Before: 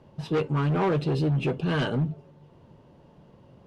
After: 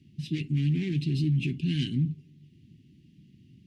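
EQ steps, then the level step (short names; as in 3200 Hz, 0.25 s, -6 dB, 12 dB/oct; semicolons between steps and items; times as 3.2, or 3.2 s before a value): HPF 73 Hz; inverse Chebyshev band-stop 480–1400 Hz, stop band 40 dB; 0.0 dB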